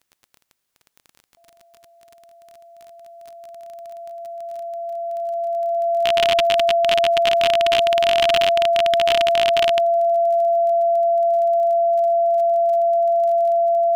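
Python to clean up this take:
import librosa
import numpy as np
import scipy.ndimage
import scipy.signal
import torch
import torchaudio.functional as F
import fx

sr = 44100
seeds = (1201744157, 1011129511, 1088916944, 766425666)

y = fx.fix_declick_ar(x, sr, threshold=6.5)
y = fx.notch(y, sr, hz=680.0, q=30.0)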